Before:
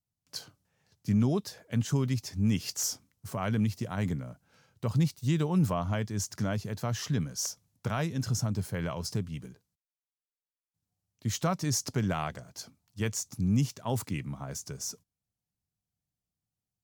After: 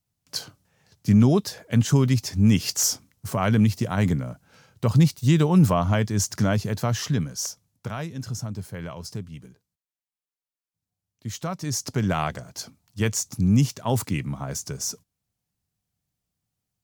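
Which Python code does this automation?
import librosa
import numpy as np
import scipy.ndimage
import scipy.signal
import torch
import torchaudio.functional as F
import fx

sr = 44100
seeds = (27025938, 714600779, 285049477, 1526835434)

y = fx.gain(x, sr, db=fx.line((6.71, 9.0), (8.07, -1.5), (11.47, -1.5), (12.2, 7.5)))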